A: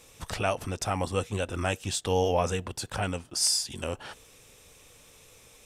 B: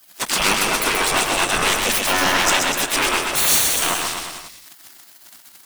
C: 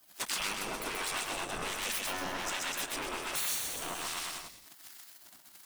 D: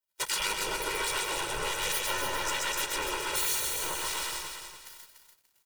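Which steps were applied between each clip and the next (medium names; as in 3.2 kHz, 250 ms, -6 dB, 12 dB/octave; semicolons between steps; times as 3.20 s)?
waveshaping leveller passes 5; spectral gate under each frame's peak -15 dB weak; bouncing-ball echo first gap 130 ms, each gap 0.9×, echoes 5; trim +6 dB
compression 6:1, threshold -25 dBFS, peak gain reduction 12 dB; harmonic tremolo 1.3 Hz, depth 50%, crossover 1 kHz; trim -6 dB
gate -50 dBFS, range -30 dB; comb 2.1 ms, depth 95%; bit-crushed delay 291 ms, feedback 35%, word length 10-bit, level -7 dB; trim +1 dB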